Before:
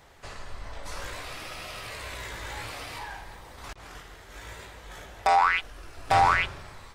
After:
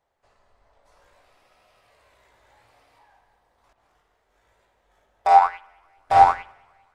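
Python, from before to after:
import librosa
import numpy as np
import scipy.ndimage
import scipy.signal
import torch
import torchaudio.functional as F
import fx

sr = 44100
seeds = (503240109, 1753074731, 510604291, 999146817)

p1 = fx.peak_eq(x, sr, hz=700.0, db=9.5, octaves=1.6)
p2 = p1 + fx.echo_feedback(p1, sr, ms=198, feedback_pct=56, wet_db=-14, dry=0)
p3 = fx.rev_spring(p2, sr, rt60_s=1.2, pass_ms=(43,), chirp_ms=30, drr_db=9.5)
y = fx.upward_expand(p3, sr, threshold_db=-25.0, expansion=2.5)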